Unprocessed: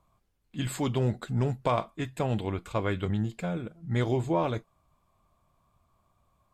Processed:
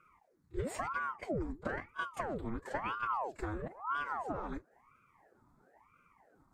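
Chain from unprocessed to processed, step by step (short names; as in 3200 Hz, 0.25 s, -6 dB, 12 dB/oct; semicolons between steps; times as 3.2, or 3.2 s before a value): compressor 16:1, threshold -34 dBFS, peak gain reduction 14 dB; pre-echo 30 ms -15.5 dB; formant-preserving pitch shift +3 st; high shelf 7500 Hz -11.5 dB; fixed phaser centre 1200 Hz, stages 4; ring modulator with a swept carrier 710 Hz, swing 85%, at 1 Hz; gain +6.5 dB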